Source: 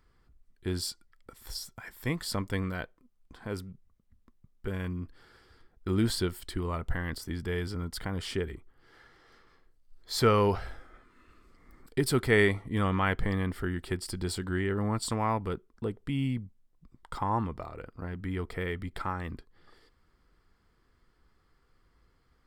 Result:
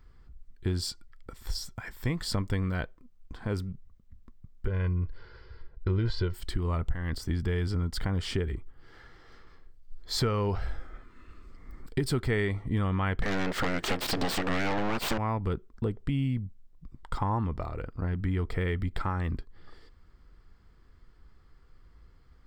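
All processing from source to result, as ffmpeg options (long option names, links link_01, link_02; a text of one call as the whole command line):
ffmpeg -i in.wav -filter_complex "[0:a]asettb=1/sr,asplit=3[link_01][link_02][link_03];[link_01]atrim=end=4.674[link_04];[link_02]atrim=start=4.67:end=6.34,asetpts=PTS-STARTPTS,afade=type=in:duration=0.004:curve=qsin,afade=type=out:start_time=1.666:duration=0.004:curve=qsin,lowpass=frequency=4900:width=0.5412,lowpass=frequency=4900:width=1.3066,equalizer=frequency=3400:width=7.3:gain=-5.5,aecho=1:1:2:0.61,atrim=end_sample=73647[link_05];[link_03]atrim=start=6.336[link_06];[link_04][link_05]acrossfade=duration=0.004:curve1=hsin:curve2=qsin[link_07];[link_07][link_06]acrossfade=duration=0.004:curve1=qsin:curve2=hsin,asettb=1/sr,asplit=3[link_08][link_09][link_10];[link_08]atrim=end=13.224[link_11];[link_09]atrim=start=13.22:end=15.18,asetpts=PTS-STARTPTS,afade=type=in:duration=0.004:curve=qsin,afade=type=out:start_time=1.956:duration=0.004:curve=qsin,aeval=exprs='abs(val(0))':channel_layout=same,acompressor=mode=upward:threshold=-32dB:ratio=2.5:attack=3.2:release=140:knee=2.83:detection=peak,asplit=2[link_12][link_13];[link_13]highpass=frequency=720:poles=1,volume=25dB,asoftclip=type=tanh:threshold=-16.5dB[link_14];[link_12][link_14]amix=inputs=2:normalize=0,lowpass=frequency=5400:poles=1,volume=-6dB[link_15];[link_10]atrim=start=15.176[link_16];[link_11][link_15]acrossfade=duration=0.004:curve1=hsin:curve2=qsin[link_17];[link_17][link_16]acrossfade=duration=0.004:curve1=qsin:curve2=hsin,lowshelf=frequency=130:gain=10.5,acompressor=threshold=-28dB:ratio=5,equalizer=frequency=11000:width_type=o:width=0.33:gain=-14.5,volume=3dB" out.wav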